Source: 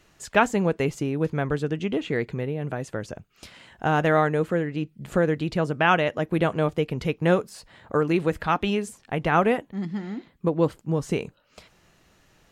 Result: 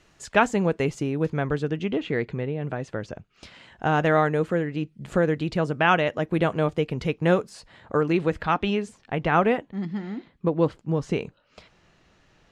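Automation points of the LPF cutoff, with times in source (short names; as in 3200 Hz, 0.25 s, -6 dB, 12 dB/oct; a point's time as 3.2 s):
1.23 s 9000 Hz
2 s 4900 Hz
3.14 s 4900 Hz
4.26 s 8500 Hz
7.49 s 8500 Hz
8.59 s 5200 Hz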